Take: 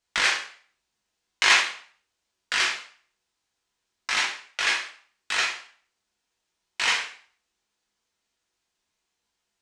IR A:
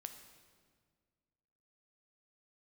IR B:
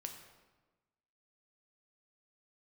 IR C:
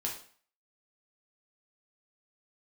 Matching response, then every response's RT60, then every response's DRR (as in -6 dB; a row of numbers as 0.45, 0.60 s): C; 1.8, 1.2, 0.50 s; 6.5, 4.0, -2.5 dB